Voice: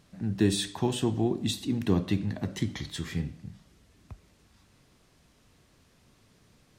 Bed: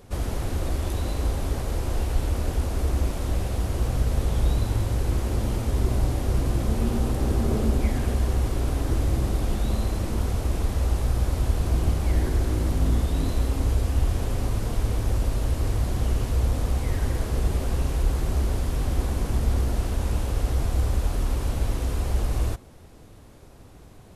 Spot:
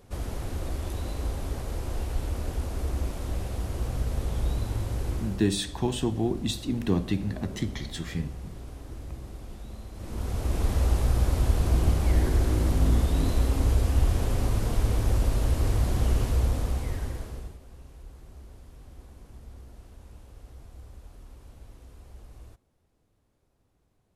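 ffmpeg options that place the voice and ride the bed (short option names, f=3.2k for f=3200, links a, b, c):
-filter_complex "[0:a]adelay=5000,volume=0dB[a];[1:a]volume=11dB,afade=t=out:st=5.09:d=0.41:silence=0.281838,afade=t=in:st=9.93:d=0.78:silence=0.149624,afade=t=out:st=16.2:d=1.38:silence=0.0707946[b];[a][b]amix=inputs=2:normalize=0"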